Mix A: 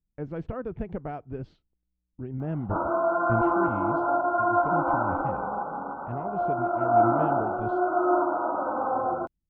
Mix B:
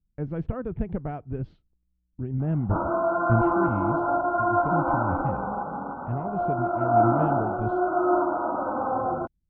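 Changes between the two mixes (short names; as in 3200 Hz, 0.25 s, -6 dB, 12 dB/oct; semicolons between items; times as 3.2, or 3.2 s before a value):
background: remove notches 50/100/150/200/250 Hz; master: add tone controls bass +7 dB, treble -7 dB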